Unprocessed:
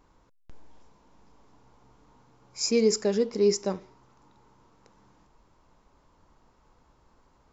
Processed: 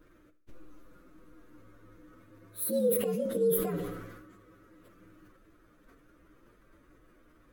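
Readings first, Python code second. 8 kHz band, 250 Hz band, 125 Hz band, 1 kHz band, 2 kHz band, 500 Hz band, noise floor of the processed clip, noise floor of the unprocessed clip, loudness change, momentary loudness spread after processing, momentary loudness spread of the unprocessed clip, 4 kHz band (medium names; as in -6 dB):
no reading, -5.0 dB, -0.5 dB, -3.0 dB, -6.5 dB, -4.0 dB, -62 dBFS, -64 dBFS, -4.5 dB, 18 LU, 10 LU, -16.5 dB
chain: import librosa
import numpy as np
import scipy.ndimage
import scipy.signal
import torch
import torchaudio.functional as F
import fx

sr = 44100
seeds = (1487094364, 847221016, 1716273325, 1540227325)

p1 = fx.partial_stretch(x, sr, pct=124)
p2 = fx.peak_eq(p1, sr, hz=6300.0, db=-9.0, octaves=0.83)
p3 = fx.over_compress(p2, sr, threshold_db=-35.0, ratio=-0.5)
p4 = p2 + (p3 * 10.0 ** (1.5 / 20.0))
p5 = fx.graphic_eq_31(p4, sr, hz=(315, 500, 800, 6300), db=(12, 5, -10, 9))
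p6 = p5 + fx.echo_feedback(p5, sr, ms=76, feedback_pct=59, wet_db=-21.5, dry=0)
p7 = fx.sustainer(p6, sr, db_per_s=43.0)
y = p7 * 10.0 ** (-8.5 / 20.0)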